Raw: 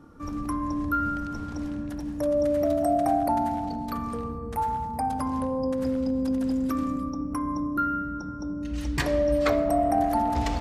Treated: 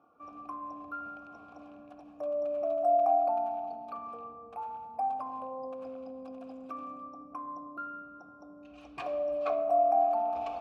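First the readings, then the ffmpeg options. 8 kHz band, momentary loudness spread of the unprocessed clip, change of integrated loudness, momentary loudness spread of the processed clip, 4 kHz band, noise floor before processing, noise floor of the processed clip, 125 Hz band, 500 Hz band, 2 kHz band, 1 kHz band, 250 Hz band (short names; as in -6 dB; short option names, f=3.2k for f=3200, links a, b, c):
under -25 dB, 10 LU, -5.0 dB, 24 LU, under -15 dB, -34 dBFS, -52 dBFS, under -25 dB, -4.0 dB, under -10 dB, -3.5 dB, -20.0 dB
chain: -filter_complex "[0:a]asplit=3[a][b][c];[a]bandpass=f=730:t=q:w=8,volume=0dB[d];[b]bandpass=f=1.09k:t=q:w=8,volume=-6dB[e];[c]bandpass=f=2.44k:t=q:w=8,volume=-9dB[f];[d][e][f]amix=inputs=3:normalize=0,volume=2dB"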